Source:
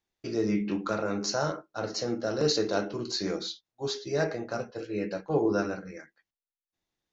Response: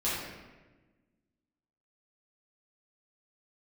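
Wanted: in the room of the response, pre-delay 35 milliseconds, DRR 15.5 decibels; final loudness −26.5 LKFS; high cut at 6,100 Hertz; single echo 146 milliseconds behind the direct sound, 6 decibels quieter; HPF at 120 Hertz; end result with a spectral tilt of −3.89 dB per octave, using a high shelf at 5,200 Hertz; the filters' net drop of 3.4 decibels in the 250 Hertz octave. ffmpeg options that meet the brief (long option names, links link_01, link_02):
-filter_complex "[0:a]highpass=120,lowpass=6100,equalizer=frequency=250:width_type=o:gain=-4.5,highshelf=frequency=5200:gain=5,aecho=1:1:146:0.501,asplit=2[link_01][link_02];[1:a]atrim=start_sample=2205,adelay=35[link_03];[link_02][link_03]afir=irnorm=-1:irlink=0,volume=-24dB[link_04];[link_01][link_04]amix=inputs=2:normalize=0,volume=4dB"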